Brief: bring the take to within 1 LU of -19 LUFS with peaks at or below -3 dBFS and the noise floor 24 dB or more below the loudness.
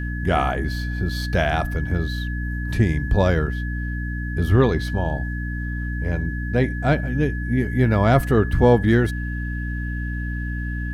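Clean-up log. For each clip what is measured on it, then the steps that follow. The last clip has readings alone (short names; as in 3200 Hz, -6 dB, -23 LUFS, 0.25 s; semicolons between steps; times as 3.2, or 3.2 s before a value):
hum 60 Hz; harmonics up to 300 Hz; hum level -24 dBFS; steady tone 1700 Hz; tone level -33 dBFS; loudness -22.0 LUFS; peak -3.5 dBFS; loudness target -19.0 LUFS
-> de-hum 60 Hz, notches 5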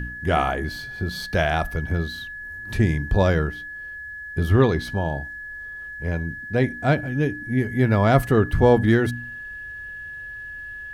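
hum none; steady tone 1700 Hz; tone level -33 dBFS
-> notch 1700 Hz, Q 30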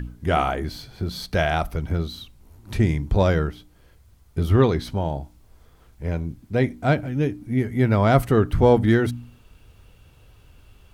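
steady tone none; loudness -22.5 LUFS; peak -4.5 dBFS; loudness target -19.0 LUFS
-> gain +3.5 dB; limiter -3 dBFS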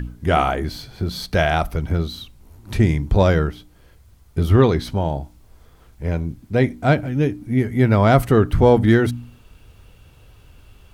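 loudness -19.0 LUFS; peak -3.0 dBFS; noise floor -51 dBFS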